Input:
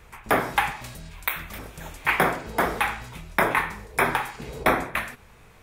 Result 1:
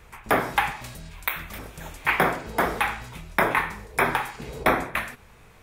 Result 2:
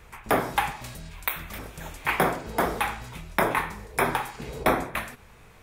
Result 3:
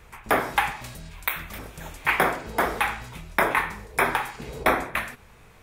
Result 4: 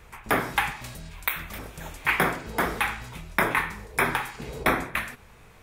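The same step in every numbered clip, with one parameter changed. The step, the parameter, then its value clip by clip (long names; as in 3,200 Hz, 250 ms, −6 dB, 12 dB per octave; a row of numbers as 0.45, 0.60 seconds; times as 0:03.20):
dynamic equaliser, frequency: 9,000, 1,900, 150, 670 Hertz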